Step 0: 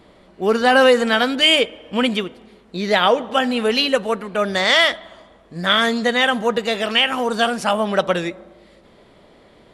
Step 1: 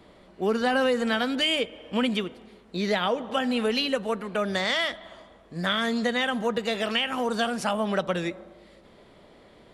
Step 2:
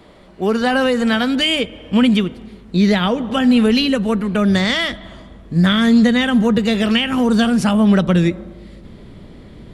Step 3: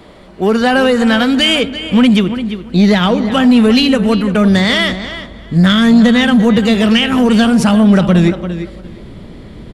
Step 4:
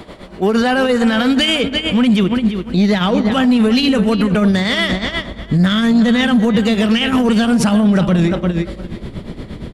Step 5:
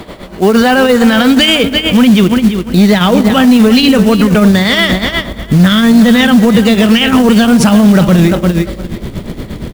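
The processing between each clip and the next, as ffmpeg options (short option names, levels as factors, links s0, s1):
-filter_complex "[0:a]acrossover=split=250[s0][s1];[s1]acompressor=threshold=0.0794:ratio=2.5[s2];[s0][s2]amix=inputs=2:normalize=0,volume=0.668"
-af "asubboost=boost=6:cutoff=250,volume=2.37"
-filter_complex "[0:a]asplit=2[s0][s1];[s1]adelay=344,lowpass=f=4700:p=1,volume=0.237,asplit=2[s2][s3];[s3]adelay=344,lowpass=f=4700:p=1,volume=0.18[s4];[s0][s2][s4]amix=inputs=3:normalize=0,acontrast=53"
-af "tremolo=f=8.5:d=0.73,alimiter=level_in=4.47:limit=0.891:release=50:level=0:latency=1,volume=0.501"
-af "acrusher=bits=5:mode=log:mix=0:aa=0.000001,volume=2.11"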